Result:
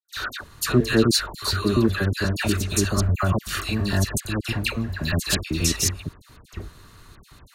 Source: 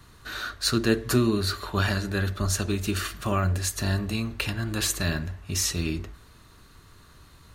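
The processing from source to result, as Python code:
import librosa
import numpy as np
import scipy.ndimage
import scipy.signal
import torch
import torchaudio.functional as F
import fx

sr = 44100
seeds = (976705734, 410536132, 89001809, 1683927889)

y = fx.block_reorder(x, sr, ms=120.0, group=5)
y = fx.step_gate(y, sr, bpm=191, pattern='.xx.xxxxxxxxx', floor_db=-60.0, edge_ms=4.5)
y = fx.dispersion(y, sr, late='lows', ms=89.0, hz=1600.0)
y = F.gain(torch.from_numpy(y), 4.5).numpy()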